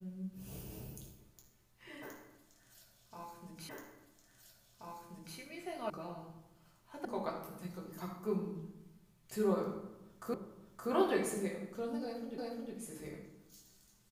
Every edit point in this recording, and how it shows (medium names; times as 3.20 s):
3.69 s: repeat of the last 1.68 s
5.90 s: sound stops dead
7.05 s: sound stops dead
10.34 s: repeat of the last 0.57 s
12.38 s: repeat of the last 0.36 s